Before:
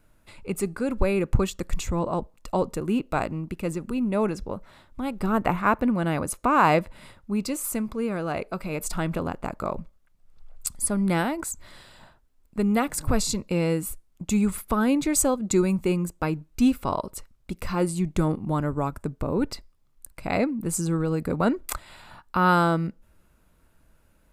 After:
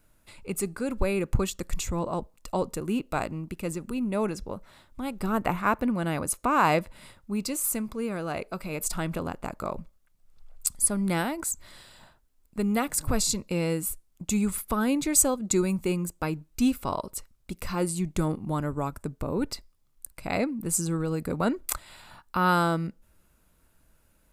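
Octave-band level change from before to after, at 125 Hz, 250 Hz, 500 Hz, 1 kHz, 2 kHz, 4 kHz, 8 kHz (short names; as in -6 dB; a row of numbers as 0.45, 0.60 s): -3.5, -3.5, -3.5, -3.0, -2.5, 0.0, +2.5 dB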